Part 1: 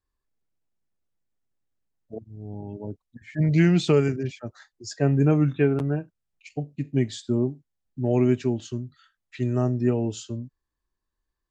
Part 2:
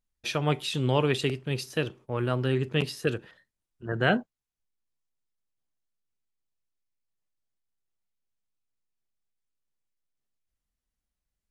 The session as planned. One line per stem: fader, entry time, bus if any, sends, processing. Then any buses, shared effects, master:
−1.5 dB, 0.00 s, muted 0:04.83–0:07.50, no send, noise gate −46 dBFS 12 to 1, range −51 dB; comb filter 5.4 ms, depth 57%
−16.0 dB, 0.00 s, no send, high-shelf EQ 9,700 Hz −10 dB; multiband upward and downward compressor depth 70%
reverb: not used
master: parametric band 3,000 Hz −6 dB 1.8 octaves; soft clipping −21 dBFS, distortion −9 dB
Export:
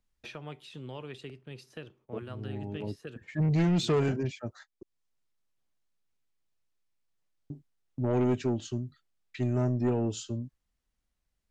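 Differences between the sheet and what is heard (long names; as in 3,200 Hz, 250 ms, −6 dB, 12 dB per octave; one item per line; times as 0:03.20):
stem 1: missing comb filter 5.4 ms, depth 57%
master: missing parametric band 3,000 Hz −6 dB 1.8 octaves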